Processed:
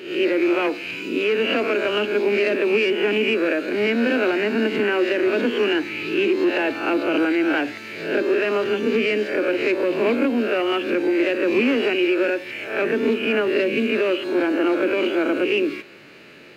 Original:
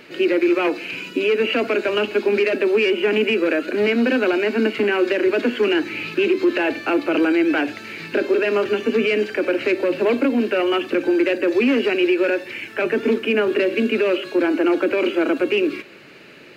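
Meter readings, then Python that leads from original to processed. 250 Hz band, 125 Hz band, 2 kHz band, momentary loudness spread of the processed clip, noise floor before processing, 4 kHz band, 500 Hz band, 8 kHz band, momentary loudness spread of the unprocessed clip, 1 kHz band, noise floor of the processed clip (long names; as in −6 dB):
−1.5 dB, −0.5 dB, 0.0 dB, 4 LU, −43 dBFS, 0.0 dB, −1.5 dB, can't be measured, 4 LU, −0.5 dB, −37 dBFS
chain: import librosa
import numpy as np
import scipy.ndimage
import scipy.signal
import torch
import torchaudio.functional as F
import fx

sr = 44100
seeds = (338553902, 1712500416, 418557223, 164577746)

y = fx.spec_swells(x, sr, rise_s=0.61)
y = y * 10.0 ** (-3.0 / 20.0)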